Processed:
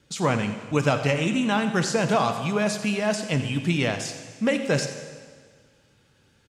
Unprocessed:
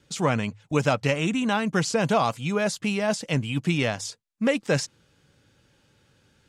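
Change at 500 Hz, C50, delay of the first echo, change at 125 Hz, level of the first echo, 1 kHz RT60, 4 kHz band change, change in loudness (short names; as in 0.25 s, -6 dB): +0.5 dB, 8.0 dB, 87 ms, +1.0 dB, -14.5 dB, 1.7 s, +1.0 dB, +0.5 dB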